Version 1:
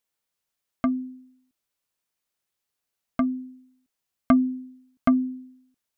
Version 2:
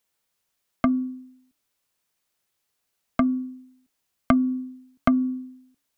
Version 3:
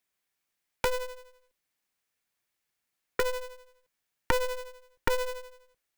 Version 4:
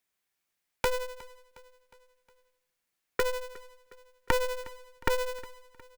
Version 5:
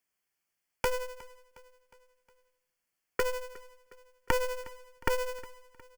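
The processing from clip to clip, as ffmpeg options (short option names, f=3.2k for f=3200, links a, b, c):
-filter_complex "[0:a]bandreject=f=282.3:t=h:w=4,bandreject=f=564.6:t=h:w=4,bandreject=f=846.9:t=h:w=4,bandreject=f=1.1292k:t=h:w=4,bandreject=f=1.4115k:t=h:w=4,acrossover=split=140|3000[a][b][c];[b]acompressor=threshold=-24dB:ratio=6[d];[a][d][c]amix=inputs=3:normalize=0,volume=6dB"
-af "equalizer=f=2k:t=o:w=0.39:g=8.5,aeval=exprs='val(0)*sgn(sin(2*PI*250*n/s))':c=same,volume=-6.5dB"
-af "aecho=1:1:361|722|1083|1444:0.0891|0.0481|0.026|0.014"
-af "acrusher=bits=6:mode=log:mix=0:aa=0.000001,asuperstop=centerf=3800:order=4:qfactor=4.7,volume=-1.5dB"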